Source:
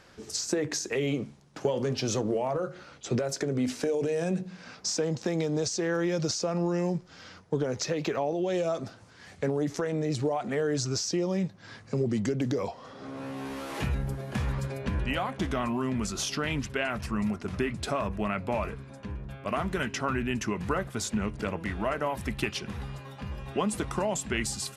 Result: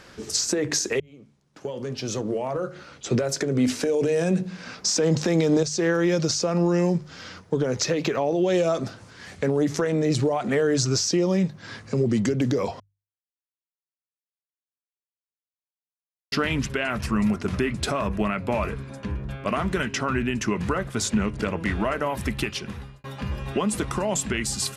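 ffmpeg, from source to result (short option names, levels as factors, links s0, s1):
-filter_complex "[0:a]asettb=1/sr,asplit=3[s0][s1][s2];[s0]atrim=end=19.284[s3];[s1]atrim=start=19.28:end=21.92,asetpts=PTS-STARTPTS,afade=t=in:d=0.004:c=qsin,afade=t=out:st=2.636:d=0.004:c=qsin,lowpass=11000[s4];[s2]atrim=start=21.916[s5];[s3][s4]acrossfade=d=0.004:c1=hsin:c2=qsin[s6];[s6][s5]acrossfade=d=0.004:c1=qsin:c2=hsin,asplit=7[s7][s8][s9][s10][s11][s12][s13];[s7]atrim=end=1,asetpts=PTS-STARTPTS,afade=t=out:st=0.996:d=0.004:c=hsin[s14];[s8]atrim=start=1:end=4.962,asetpts=PTS-STARTPTS,afade=t=in:d=2.74[s15];[s9]atrim=start=4.958:end=5.632,asetpts=PTS-STARTPTS,volume=2.99[s16];[s10]atrim=start=5.628:end=12.8,asetpts=PTS-STARTPTS,afade=t=out:st=7.168:d=0.004:c=hsin[s17];[s11]atrim=start=12.8:end=16.32,asetpts=PTS-STARTPTS,volume=0[s18];[s12]atrim=start=16.32:end=23.04,asetpts=PTS-STARTPTS,afade=t=in:d=0.004:c=hsin,afade=t=out:st=6.11:d=0.61[s19];[s13]atrim=start=23.04,asetpts=PTS-STARTPTS,afade=t=in:d=0.004:c=hsin[s20];[s14][s15]concat=n=2:v=0:a=1[s21];[s21][s16]acrossfade=d=0.004:c1=hsin:c2=hsin[s22];[s17][s18][s19][s20]concat=n=4:v=0:a=1[s23];[s22][s23]acrossfade=d=0.004:c1=hsin:c2=hsin,equalizer=f=760:t=o:w=0.64:g=-3,bandreject=f=50:t=h:w=6,bandreject=f=100:t=h:w=6,bandreject=f=150:t=h:w=6,alimiter=limit=0.0891:level=0:latency=1:release=249,volume=2.51"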